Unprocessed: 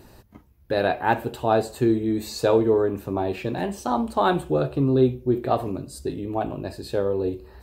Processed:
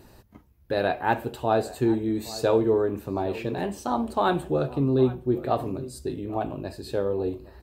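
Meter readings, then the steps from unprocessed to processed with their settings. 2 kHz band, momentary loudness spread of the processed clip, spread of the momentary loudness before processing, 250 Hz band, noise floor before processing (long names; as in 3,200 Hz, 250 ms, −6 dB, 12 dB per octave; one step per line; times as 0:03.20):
−2.5 dB, 9 LU, 9 LU, −2.5 dB, −53 dBFS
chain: slap from a distant wall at 140 metres, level −17 dB
level −2.5 dB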